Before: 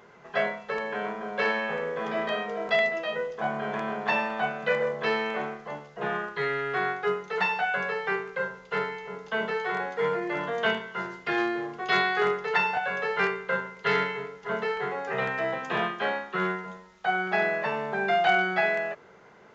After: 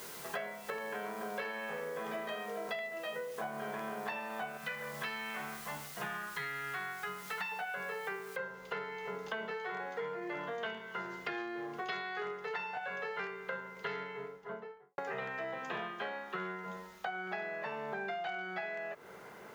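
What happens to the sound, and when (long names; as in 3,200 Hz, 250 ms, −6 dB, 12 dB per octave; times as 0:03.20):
0:04.57–0:07.52: parametric band 450 Hz −14.5 dB 1.4 octaves
0:08.36: noise floor change −51 dB −70 dB
0:13.52–0:14.98: fade out and dull
whole clip: low-shelf EQ 130 Hz −5 dB; downward compressor 12 to 1, threshold −39 dBFS; level +2.5 dB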